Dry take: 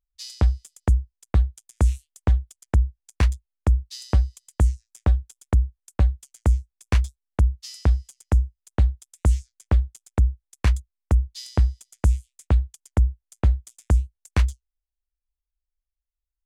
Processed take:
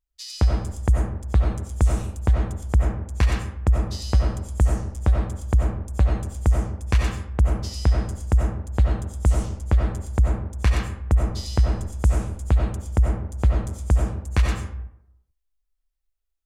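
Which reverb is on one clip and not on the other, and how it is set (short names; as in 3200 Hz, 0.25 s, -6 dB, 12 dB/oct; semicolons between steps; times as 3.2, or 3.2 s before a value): digital reverb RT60 0.78 s, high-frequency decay 0.55×, pre-delay 50 ms, DRR -1.5 dB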